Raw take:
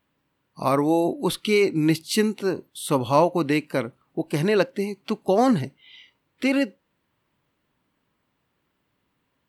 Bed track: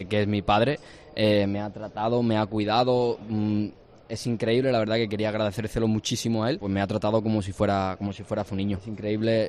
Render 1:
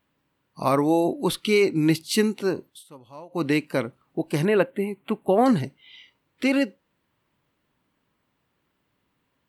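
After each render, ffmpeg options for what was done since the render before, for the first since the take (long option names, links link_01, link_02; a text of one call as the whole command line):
ffmpeg -i in.wav -filter_complex "[0:a]asettb=1/sr,asplit=3[link_01][link_02][link_03];[link_01]atrim=end=4.454[link_04];[link_02]atrim=start=4.45:end=5.46,asetpts=PTS-STARTPTS,afade=type=in:duration=0.004:curve=qsin,afade=type=out:start_time=1.006:duration=0.004:curve=qsin,asuperstop=centerf=5400:order=4:qfactor=0.92[link_05];[link_03]atrim=start=5.456[link_06];[link_04][link_05]acrossfade=duration=0.004:curve1=hsin:curve2=qsin[link_07];[link_07][link_06]acrossfade=duration=0.004:curve1=qsin:curve2=hsin,asplit=3[link_08][link_09][link_10];[link_08]atrim=end=2.84,asetpts=PTS-STARTPTS,afade=type=out:start_time=2.69:duration=0.15:silence=0.0630957[link_11];[link_09]atrim=start=2.84:end=3.29,asetpts=PTS-STARTPTS,volume=-24dB[link_12];[link_10]atrim=start=3.29,asetpts=PTS-STARTPTS,afade=type=in:duration=0.15:silence=0.0630957[link_13];[link_11][link_12][link_13]concat=n=3:v=0:a=1" out.wav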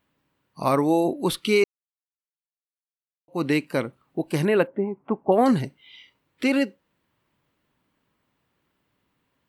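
ffmpeg -i in.wav -filter_complex "[0:a]asettb=1/sr,asplit=3[link_01][link_02][link_03];[link_01]atrim=end=4.674[link_04];[link_02]atrim=start=4.67:end=5.32,asetpts=PTS-STARTPTS,afade=type=in:duration=0.004:curve=qsin,afade=type=out:start_time=0.646:duration=0.004:curve=qsin,lowpass=frequency=950:width_type=q:width=1.7[link_05];[link_03]atrim=start=5.316[link_06];[link_04][link_05]acrossfade=duration=0.004:curve1=hsin:curve2=qsin[link_07];[link_07][link_06]acrossfade=duration=0.004:curve1=qsin:curve2=hsin,asplit=3[link_08][link_09][link_10];[link_08]atrim=end=1.64,asetpts=PTS-STARTPTS,afade=type=out:start_time=1.636:duration=0.004:curve=hsin[link_11];[link_09]atrim=start=1.64:end=3.28,asetpts=PTS-STARTPTS,volume=0[link_12];[link_10]atrim=start=3.28,asetpts=PTS-STARTPTS,afade=type=in:duration=0.004:curve=hsin[link_13];[link_11][link_12][link_13]concat=n=3:v=0:a=1" out.wav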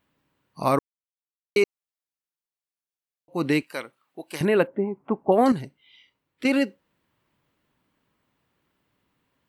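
ffmpeg -i in.wav -filter_complex "[0:a]asettb=1/sr,asplit=3[link_01][link_02][link_03];[link_01]atrim=end=3.624[link_04];[link_02]atrim=start=3.62:end=4.41,asetpts=PTS-STARTPTS,afade=type=in:duration=0.004:curve=qsin,afade=type=out:start_time=0.786:duration=0.004:curve=qsin,highpass=frequency=1400:poles=1[link_05];[link_03]atrim=start=4.406[link_06];[link_04][link_05]acrossfade=duration=0.004:curve1=hsin:curve2=qsin[link_07];[link_07][link_06]acrossfade=duration=0.004:curve1=qsin:curve2=hsin,asplit=5[link_08][link_09][link_10][link_11][link_12];[link_08]atrim=end=0.79,asetpts=PTS-STARTPTS,afade=type=out:start_time=0.786:duration=0.004:curve=hsin[link_13];[link_09]atrim=start=0.79:end=1.56,asetpts=PTS-STARTPTS,volume=0[link_14];[link_10]atrim=start=1.56:end=5.522,asetpts=PTS-STARTPTS,afade=type=in:duration=0.004:curve=hsin[link_15];[link_11]atrim=start=5.518:end=6.452,asetpts=PTS-STARTPTS,volume=-7dB[link_16];[link_12]atrim=start=6.448[link_17];[link_13][link_14][link_15]concat=n=3:v=0:a=1[link_18];[link_18][link_16]acrossfade=duration=0.004:curve1=hsin:curve2=hsin[link_19];[link_19][link_17]acrossfade=duration=0.004:curve1=hsin:curve2=hsin" out.wav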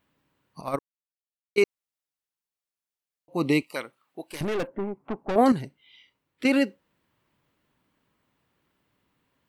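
ffmpeg -i in.wav -filter_complex "[0:a]asettb=1/sr,asplit=3[link_01][link_02][link_03];[link_01]atrim=end=0.614[link_04];[link_02]atrim=start=0.61:end=1.58,asetpts=PTS-STARTPTS,afade=type=in:duration=0.004:curve=qsin,afade=type=out:start_time=0.966:duration=0.004:curve=qsin,agate=range=-14dB:threshold=-19dB:ratio=16:release=100:detection=peak[link_05];[link_03]atrim=start=1.576[link_06];[link_04][link_05]acrossfade=duration=0.004:curve1=hsin:curve2=qsin[link_07];[link_07][link_06]acrossfade=duration=0.004:curve1=qsin:curve2=hsin,asettb=1/sr,asplit=3[link_08][link_09][link_10];[link_08]atrim=end=3.364[link_11];[link_09]atrim=start=3.36:end=3.76,asetpts=PTS-STARTPTS,afade=type=in:duration=0.004:curve=qsin,afade=type=out:start_time=0.396:duration=0.004:curve=qsin,asuperstop=centerf=1600:order=8:qfactor=2.5[link_12];[link_10]atrim=start=3.756[link_13];[link_11][link_12]acrossfade=duration=0.004:curve1=hsin:curve2=qsin[link_14];[link_14][link_13]acrossfade=duration=0.004:curve1=qsin:curve2=hsin,asettb=1/sr,asplit=3[link_15][link_16][link_17];[link_15]atrim=end=4.274[link_18];[link_16]atrim=start=4.27:end=5.36,asetpts=PTS-STARTPTS,afade=type=in:duration=0.004:curve=qsin,afade=type=out:start_time=1.086:duration=0.004:curve=qsin,aeval=exprs='(tanh(17.8*val(0)+0.5)-tanh(0.5))/17.8':channel_layout=same[link_19];[link_17]atrim=start=5.356[link_20];[link_18][link_19]acrossfade=duration=0.004:curve1=hsin:curve2=qsin[link_21];[link_21][link_20]acrossfade=duration=0.004:curve1=qsin:curve2=hsin" out.wav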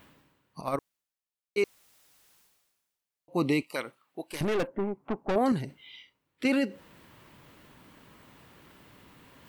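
ffmpeg -i in.wav -af "areverse,acompressor=mode=upward:threshold=-39dB:ratio=2.5,areverse,alimiter=limit=-17dB:level=0:latency=1:release=12" out.wav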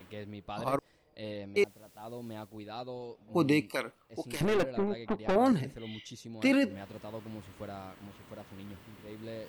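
ffmpeg -i in.wav -i bed.wav -filter_complex "[1:a]volume=-19.5dB[link_01];[0:a][link_01]amix=inputs=2:normalize=0" out.wav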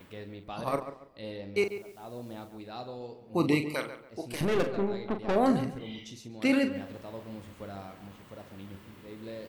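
ffmpeg -i in.wav -filter_complex "[0:a]asplit=2[link_01][link_02];[link_02]adelay=41,volume=-9dB[link_03];[link_01][link_03]amix=inputs=2:normalize=0,asplit=2[link_04][link_05];[link_05]adelay=140,lowpass=frequency=2400:poles=1,volume=-11dB,asplit=2[link_06][link_07];[link_07]adelay=140,lowpass=frequency=2400:poles=1,volume=0.3,asplit=2[link_08][link_09];[link_09]adelay=140,lowpass=frequency=2400:poles=1,volume=0.3[link_10];[link_04][link_06][link_08][link_10]amix=inputs=4:normalize=0" out.wav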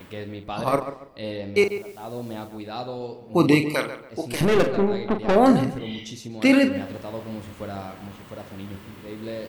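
ffmpeg -i in.wav -af "volume=8.5dB" out.wav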